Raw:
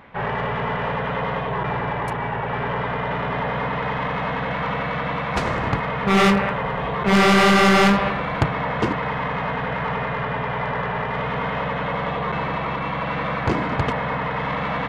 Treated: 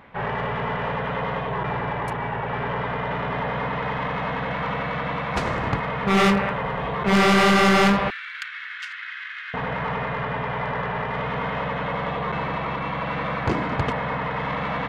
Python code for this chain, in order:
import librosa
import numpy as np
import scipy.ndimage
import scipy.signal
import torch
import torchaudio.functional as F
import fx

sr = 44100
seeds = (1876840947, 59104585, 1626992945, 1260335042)

y = fx.ellip_highpass(x, sr, hz=1500.0, order=4, stop_db=50, at=(8.1, 9.54))
y = F.gain(torch.from_numpy(y), -2.0).numpy()